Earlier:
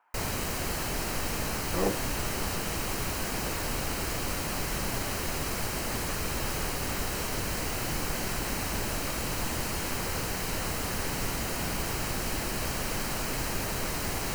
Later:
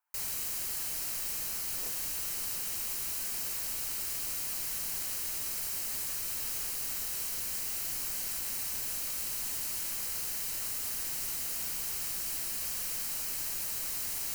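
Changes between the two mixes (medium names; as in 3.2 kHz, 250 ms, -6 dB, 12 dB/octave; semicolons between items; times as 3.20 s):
speech -7.0 dB; master: add pre-emphasis filter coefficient 0.9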